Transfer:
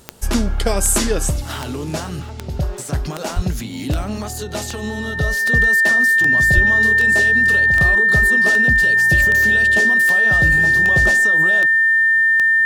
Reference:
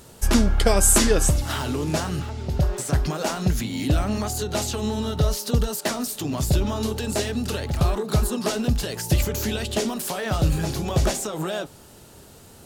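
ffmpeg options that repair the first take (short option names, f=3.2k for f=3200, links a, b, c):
-filter_complex "[0:a]adeclick=t=4,bandreject=f=1.8k:w=30,asplit=3[a][b][c];[a]afade=t=out:st=3.35:d=0.02[d];[b]highpass=f=140:w=0.5412,highpass=f=140:w=1.3066,afade=t=in:st=3.35:d=0.02,afade=t=out:st=3.47:d=0.02[e];[c]afade=t=in:st=3.47:d=0.02[f];[d][e][f]amix=inputs=3:normalize=0,asplit=3[g][h][i];[g]afade=t=out:st=6.54:d=0.02[j];[h]highpass=f=140:w=0.5412,highpass=f=140:w=1.3066,afade=t=in:st=6.54:d=0.02,afade=t=out:st=6.66:d=0.02[k];[i]afade=t=in:st=6.66:d=0.02[l];[j][k][l]amix=inputs=3:normalize=0"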